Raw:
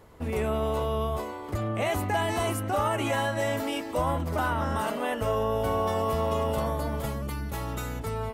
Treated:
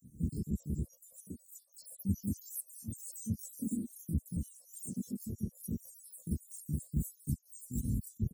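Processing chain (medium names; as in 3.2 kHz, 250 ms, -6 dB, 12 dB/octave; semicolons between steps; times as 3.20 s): random holes in the spectrogram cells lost 82%; high-pass 82 Hz 12 dB/octave; harmony voices -5 st -7 dB, -3 st -2 dB, +12 st -2 dB; compression, threshold -29 dBFS, peak gain reduction 8 dB; elliptic band-stop 220–8100 Hz, stop band 60 dB; trim +5.5 dB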